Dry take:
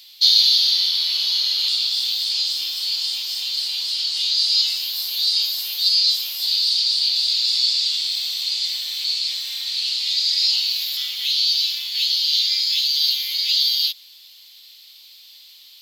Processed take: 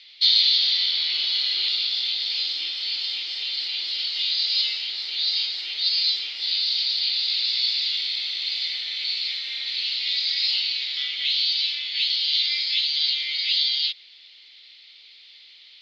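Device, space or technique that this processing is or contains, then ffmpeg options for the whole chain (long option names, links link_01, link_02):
kitchen radio: -filter_complex "[0:a]asettb=1/sr,asplit=3[link_01][link_02][link_03];[link_01]atrim=end=1.354[link_04];[link_02]atrim=start=1.35:end=2.47,asetpts=PTS-STARTPTS,afade=type=in:duration=0.004:curve=qsin,afade=type=out:start_time=1.116:duration=0.004:curve=qsin,highpass=210[link_05];[link_03]atrim=start=2.466[link_06];[link_04][link_05]acrossfade=duration=0.004:curve1=hsin:curve2=qsin[link_07];[link_07][link_06]acrossfade=duration=0.004:curve1=qsin:curve2=hsin,highpass=210,equalizer=frequency=420:width_type=q:width=4:gain=5,equalizer=frequency=1000:width_type=q:width=4:gain=-7,equalizer=frequency=2100:width_type=q:width=4:gain=9,lowpass=frequency=4000:width=0.5412,lowpass=frequency=4000:width=1.3066"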